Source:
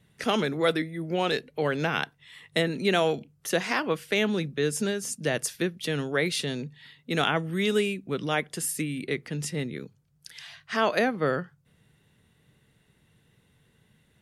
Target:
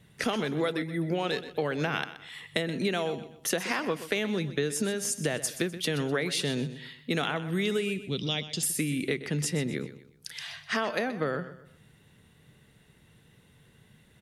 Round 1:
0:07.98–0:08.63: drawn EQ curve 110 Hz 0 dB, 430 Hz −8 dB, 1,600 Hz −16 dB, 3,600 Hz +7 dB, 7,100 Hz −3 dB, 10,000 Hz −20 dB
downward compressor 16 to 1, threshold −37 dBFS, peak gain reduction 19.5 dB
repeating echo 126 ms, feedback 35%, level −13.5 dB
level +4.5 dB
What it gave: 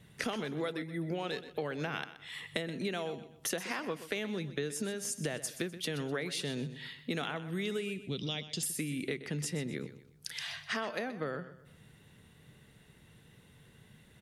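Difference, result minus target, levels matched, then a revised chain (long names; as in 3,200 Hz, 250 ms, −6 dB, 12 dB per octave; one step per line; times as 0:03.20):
downward compressor: peak gain reduction +7 dB
0:07.98–0:08.63: drawn EQ curve 110 Hz 0 dB, 430 Hz −8 dB, 1,600 Hz −16 dB, 3,600 Hz +7 dB, 7,100 Hz −3 dB, 10,000 Hz −20 dB
downward compressor 16 to 1, threshold −29.5 dBFS, peak gain reduction 12.5 dB
repeating echo 126 ms, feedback 35%, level −13.5 dB
level +4.5 dB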